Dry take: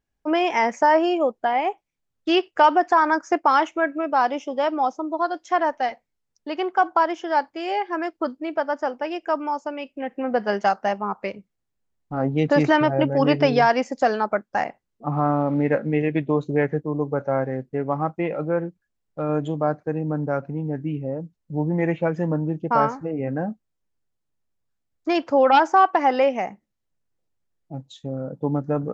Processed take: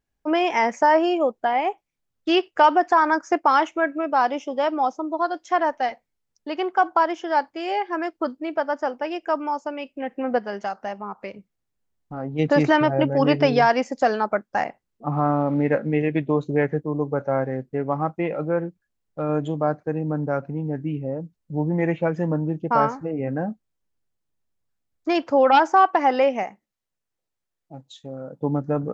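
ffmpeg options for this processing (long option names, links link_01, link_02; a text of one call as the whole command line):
ffmpeg -i in.wav -filter_complex "[0:a]asplit=3[link_01][link_02][link_03];[link_01]afade=type=out:start_time=10.38:duration=0.02[link_04];[link_02]acompressor=threshold=-38dB:ratio=1.5:attack=3.2:release=140:knee=1:detection=peak,afade=type=in:start_time=10.38:duration=0.02,afade=type=out:start_time=12.38:duration=0.02[link_05];[link_03]afade=type=in:start_time=12.38:duration=0.02[link_06];[link_04][link_05][link_06]amix=inputs=3:normalize=0,asettb=1/sr,asplit=3[link_07][link_08][link_09];[link_07]atrim=end=26.434[link_10];[link_08]atrim=start=26.43:end=28.41,asetpts=PTS-STARTPTS,afade=type=in:duration=0.004:curve=qsin,afade=type=out:start_time=1.976:duration=0.004:curve=qsin,lowshelf=frequency=380:gain=-9.5[link_11];[link_09]atrim=start=28.406[link_12];[link_10][link_11]acrossfade=duration=0.004:curve1=hsin:curve2=qsin[link_13];[link_13][link_12]acrossfade=duration=0.004:curve1=qsin:curve2=hsin" out.wav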